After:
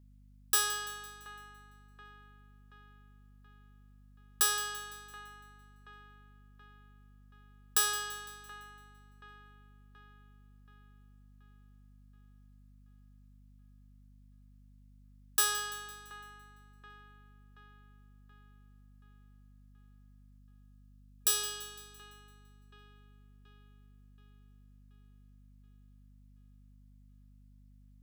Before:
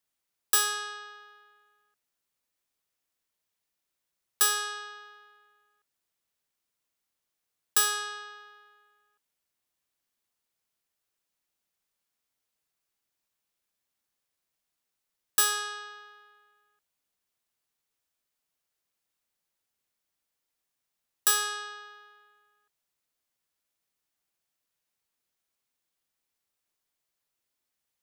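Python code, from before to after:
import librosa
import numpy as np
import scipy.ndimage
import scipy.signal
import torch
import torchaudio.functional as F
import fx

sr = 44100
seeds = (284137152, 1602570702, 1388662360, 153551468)

y = fx.spec_box(x, sr, start_s=20.38, length_s=2.8, low_hz=440.0, high_hz=2400.0, gain_db=-8)
y = fx.echo_split(y, sr, split_hz=2700.0, low_ms=728, high_ms=169, feedback_pct=52, wet_db=-15.0)
y = fx.add_hum(y, sr, base_hz=50, snr_db=16)
y = y * 10.0 ** (-4.0 / 20.0)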